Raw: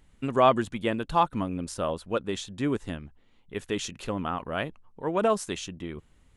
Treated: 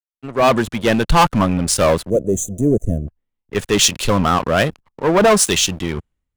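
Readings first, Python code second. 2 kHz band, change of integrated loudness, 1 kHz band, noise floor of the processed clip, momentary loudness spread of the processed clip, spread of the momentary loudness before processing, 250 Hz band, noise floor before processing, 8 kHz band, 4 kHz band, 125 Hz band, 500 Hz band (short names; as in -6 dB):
+14.0 dB, +12.0 dB, +9.0 dB, -81 dBFS, 12 LU, 17 LU, +12.0 dB, -61 dBFS, +22.0 dB, +17.0 dB, +14.5 dB, +11.0 dB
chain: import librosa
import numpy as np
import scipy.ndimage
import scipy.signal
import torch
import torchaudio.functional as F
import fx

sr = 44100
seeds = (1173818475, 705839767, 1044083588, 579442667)

y = fx.fade_in_head(x, sr, length_s=1.08)
y = fx.dynamic_eq(y, sr, hz=290.0, q=2.2, threshold_db=-42.0, ratio=4.0, max_db=-5)
y = fx.leveller(y, sr, passes=5)
y = fx.spec_box(y, sr, start_s=2.1, length_s=0.98, low_hz=710.0, high_hz=5900.0, gain_db=-29)
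y = fx.band_widen(y, sr, depth_pct=70)
y = F.gain(torch.from_numpy(y), 1.5).numpy()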